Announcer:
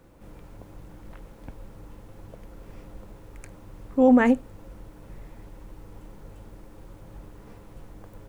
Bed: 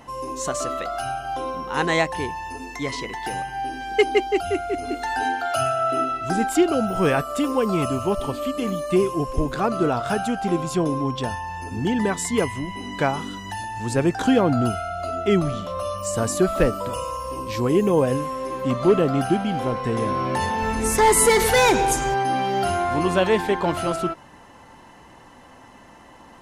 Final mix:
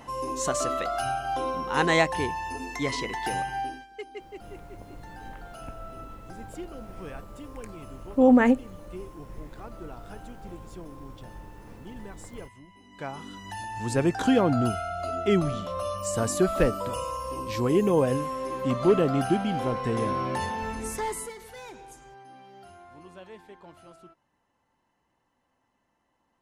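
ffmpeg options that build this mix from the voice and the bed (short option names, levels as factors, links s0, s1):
-filter_complex "[0:a]adelay=4200,volume=0.944[s0];[1:a]volume=7.08,afade=t=out:st=3.54:d=0.33:silence=0.0944061,afade=t=in:st=12.89:d=0.94:silence=0.125893,afade=t=out:st=20.03:d=1.31:silence=0.0668344[s1];[s0][s1]amix=inputs=2:normalize=0"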